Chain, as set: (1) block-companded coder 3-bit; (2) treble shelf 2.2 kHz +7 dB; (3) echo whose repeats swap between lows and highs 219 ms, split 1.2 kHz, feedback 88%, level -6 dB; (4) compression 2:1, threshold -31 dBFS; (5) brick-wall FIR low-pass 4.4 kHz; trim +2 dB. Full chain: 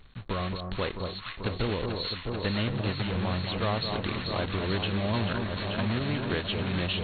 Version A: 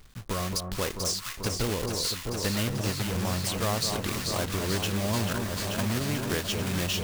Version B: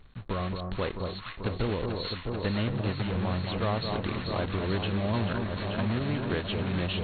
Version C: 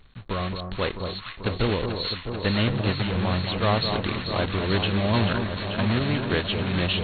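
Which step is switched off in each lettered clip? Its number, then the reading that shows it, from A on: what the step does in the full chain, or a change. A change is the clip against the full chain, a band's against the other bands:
5, 4 kHz band +2.5 dB; 2, 4 kHz band -4.0 dB; 4, mean gain reduction 4.0 dB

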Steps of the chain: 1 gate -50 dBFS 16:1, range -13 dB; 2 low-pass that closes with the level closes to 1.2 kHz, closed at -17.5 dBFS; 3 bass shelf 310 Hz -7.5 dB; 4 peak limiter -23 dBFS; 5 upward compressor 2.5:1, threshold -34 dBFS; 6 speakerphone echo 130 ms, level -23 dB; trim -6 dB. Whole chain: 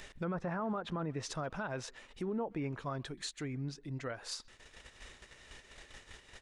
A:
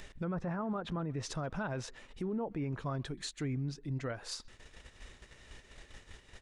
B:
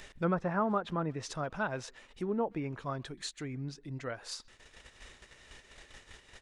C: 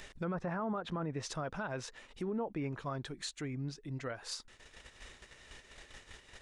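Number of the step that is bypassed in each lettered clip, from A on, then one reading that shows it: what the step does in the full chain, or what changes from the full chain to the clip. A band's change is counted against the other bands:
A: 3, 125 Hz band +4.0 dB; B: 4, crest factor change +6.0 dB; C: 6, echo-to-direct -28.5 dB to none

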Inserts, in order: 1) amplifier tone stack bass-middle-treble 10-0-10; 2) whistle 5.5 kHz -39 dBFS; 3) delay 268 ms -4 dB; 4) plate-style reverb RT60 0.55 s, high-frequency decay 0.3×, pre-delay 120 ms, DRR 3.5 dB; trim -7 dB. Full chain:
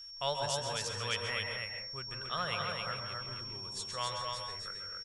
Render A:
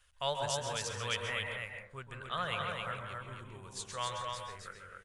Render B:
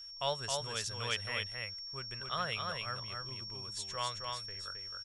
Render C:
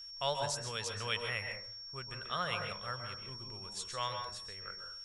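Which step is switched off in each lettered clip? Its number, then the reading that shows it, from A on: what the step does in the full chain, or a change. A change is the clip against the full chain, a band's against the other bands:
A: 2, 4 kHz band -4.0 dB; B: 4, crest factor change +1.5 dB; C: 3, echo-to-direct 0.0 dB to -3.5 dB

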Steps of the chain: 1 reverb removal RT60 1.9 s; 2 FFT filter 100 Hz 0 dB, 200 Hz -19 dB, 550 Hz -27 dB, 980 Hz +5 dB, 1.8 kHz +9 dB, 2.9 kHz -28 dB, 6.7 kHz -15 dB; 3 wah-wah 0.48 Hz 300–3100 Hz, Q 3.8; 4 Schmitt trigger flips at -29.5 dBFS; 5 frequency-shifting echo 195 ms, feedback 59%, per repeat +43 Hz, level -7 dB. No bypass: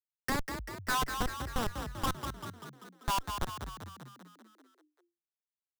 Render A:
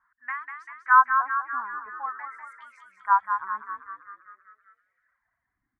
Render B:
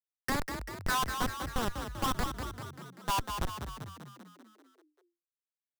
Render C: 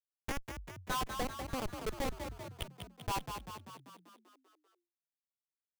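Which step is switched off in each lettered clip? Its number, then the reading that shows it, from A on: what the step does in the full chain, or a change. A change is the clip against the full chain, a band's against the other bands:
4, crest factor change +6.5 dB; 1, loudness change +1.0 LU; 2, momentary loudness spread change -4 LU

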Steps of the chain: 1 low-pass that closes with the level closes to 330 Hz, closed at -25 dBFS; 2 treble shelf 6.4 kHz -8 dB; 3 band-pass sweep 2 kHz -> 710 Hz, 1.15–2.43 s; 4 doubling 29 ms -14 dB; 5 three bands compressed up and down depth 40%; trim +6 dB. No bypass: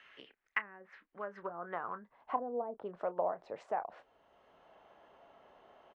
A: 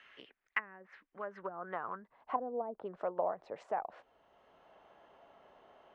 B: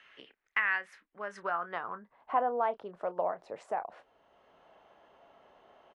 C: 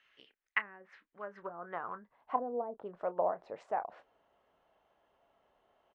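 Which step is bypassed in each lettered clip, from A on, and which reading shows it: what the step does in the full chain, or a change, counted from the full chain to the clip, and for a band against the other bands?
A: 4, momentary loudness spread change +2 LU; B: 1, 2 kHz band +6.5 dB; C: 5, momentary loudness spread change -2 LU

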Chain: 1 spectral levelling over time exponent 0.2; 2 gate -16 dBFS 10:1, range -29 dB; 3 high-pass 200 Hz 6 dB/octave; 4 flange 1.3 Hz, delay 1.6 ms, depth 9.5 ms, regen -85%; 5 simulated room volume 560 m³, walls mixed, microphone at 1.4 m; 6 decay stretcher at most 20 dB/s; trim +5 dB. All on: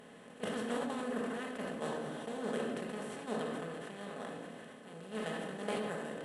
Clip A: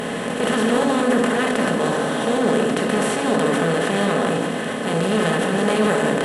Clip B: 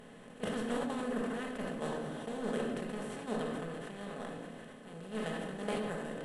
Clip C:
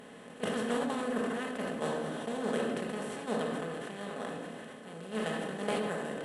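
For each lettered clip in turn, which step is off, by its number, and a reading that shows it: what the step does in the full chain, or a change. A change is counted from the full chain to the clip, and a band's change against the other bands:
2, momentary loudness spread change -5 LU; 3, 125 Hz band +3.5 dB; 4, loudness change +4.5 LU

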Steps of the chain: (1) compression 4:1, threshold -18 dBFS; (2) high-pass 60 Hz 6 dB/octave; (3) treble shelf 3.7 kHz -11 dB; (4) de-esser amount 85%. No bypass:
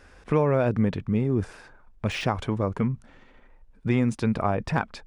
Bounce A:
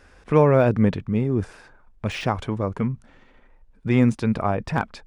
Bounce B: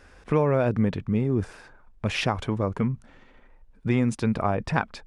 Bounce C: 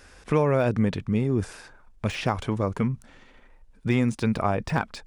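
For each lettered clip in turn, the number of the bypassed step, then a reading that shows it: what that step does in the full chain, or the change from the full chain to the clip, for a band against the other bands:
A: 1, crest factor change +2.0 dB; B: 4, crest factor change +2.0 dB; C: 3, 8 kHz band +2.0 dB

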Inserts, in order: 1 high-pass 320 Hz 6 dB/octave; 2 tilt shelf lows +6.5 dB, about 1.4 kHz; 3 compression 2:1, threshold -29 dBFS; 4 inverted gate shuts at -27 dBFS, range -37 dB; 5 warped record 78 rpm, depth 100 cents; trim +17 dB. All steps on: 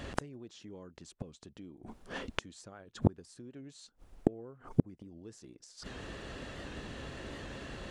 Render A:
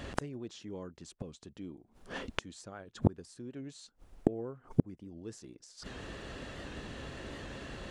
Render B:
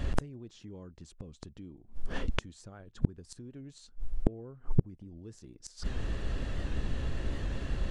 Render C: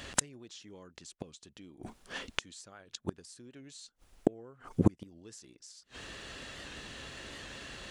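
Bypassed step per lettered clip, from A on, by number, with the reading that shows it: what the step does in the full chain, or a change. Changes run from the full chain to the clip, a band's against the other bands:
3, mean gain reduction 3.5 dB; 1, 125 Hz band +4.5 dB; 2, 8 kHz band +13.5 dB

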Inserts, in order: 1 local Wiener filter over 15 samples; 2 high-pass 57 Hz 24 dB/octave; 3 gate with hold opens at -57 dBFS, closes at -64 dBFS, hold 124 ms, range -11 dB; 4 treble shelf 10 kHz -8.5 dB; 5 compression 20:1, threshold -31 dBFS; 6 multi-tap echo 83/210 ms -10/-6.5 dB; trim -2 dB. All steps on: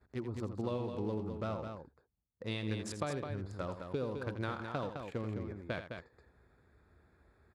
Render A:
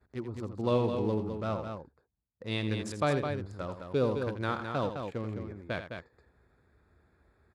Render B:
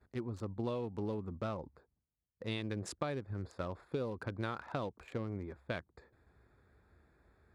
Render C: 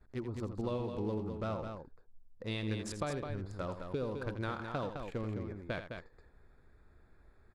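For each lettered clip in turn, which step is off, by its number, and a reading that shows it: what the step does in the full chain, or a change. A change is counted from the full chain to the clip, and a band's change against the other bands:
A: 5, mean gain reduction 3.5 dB; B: 6, echo-to-direct -5.0 dB to none; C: 2, crest factor change -2.5 dB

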